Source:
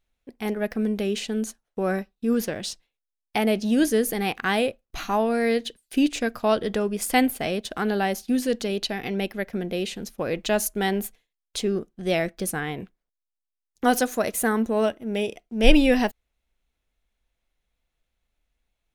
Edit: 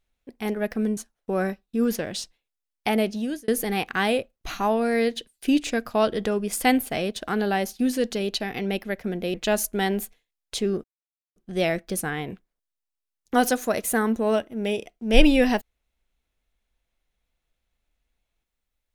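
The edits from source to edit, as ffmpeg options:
-filter_complex "[0:a]asplit=5[s0][s1][s2][s3][s4];[s0]atrim=end=0.972[s5];[s1]atrim=start=1.458:end=3.97,asetpts=PTS-STARTPTS,afade=t=out:st=2.002:d=0.51[s6];[s2]atrim=start=3.97:end=9.832,asetpts=PTS-STARTPTS,afade=t=in:d=0.004:c=hsin[s7];[s3]atrim=start=10.358:end=11.86,asetpts=PTS-STARTPTS,afade=t=out:st=1.498:d=0.004:c=hsin,apad=pad_dur=0.52[s8];[s4]atrim=start=11.86,asetpts=PTS-STARTPTS,afade=t=in:d=0.004:c=hsin[s9];[s6][s7]concat=n=2:v=0:a=1[s10];[s5][s10]acrossfade=d=0.004:c1=hsin:c2=hsin[s11];[s8][s9]concat=n=2:v=0:a=1[s12];[s11][s12]acrossfade=d=0.004:c1=hsin:c2=hsin"

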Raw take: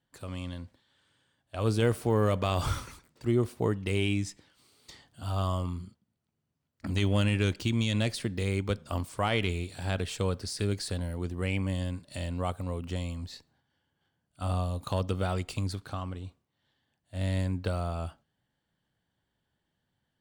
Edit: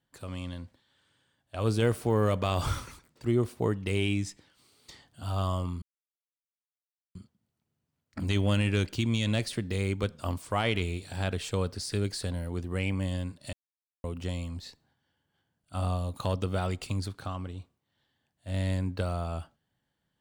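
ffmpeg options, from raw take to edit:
-filter_complex "[0:a]asplit=4[s0][s1][s2][s3];[s0]atrim=end=5.82,asetpts=PTS-STARTPTS,afade=t=out:st=5.816:d=0.004:c=hsin,apad=pad_dur=1.33[s4];[s1]atrim=start=5.82:end=12.2,asetpts=PTS-STARTPTS,afade=t=in:d=0.004:c=hsin,afade=t=out:st=6.376:d=0.004:c=hsin[s5];[s2]atrim=start=12.2:end=12.71,asetpts=PTS-STARTPTS,volume=0[s6];[s3]atrim=start=12.71,asetpts=PTS-STARTPTS,afade=t=in:d=0.004:c=hsin[s7];[s4][s5][s6][s7]concat=n=4:v=0:a=1"

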